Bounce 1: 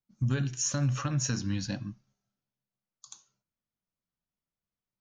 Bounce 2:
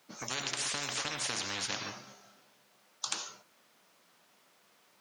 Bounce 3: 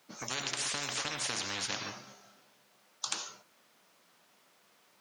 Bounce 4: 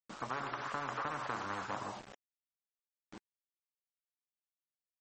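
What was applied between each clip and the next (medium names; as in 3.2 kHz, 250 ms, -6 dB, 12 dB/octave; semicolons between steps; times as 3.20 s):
high-pass 420 Hz 12 dB/octave; treble shelf 6.7 kHz -10.5 dB; spectrum-flattening compressor 10:1; trim +8 dB
no audible change
low-pass sweep 1.2 kHz -> 160 Hz, 1.64–3.62 s; bit crusher 8-bit; trim -1 dB; MP3 32 kbps 44.1 kHz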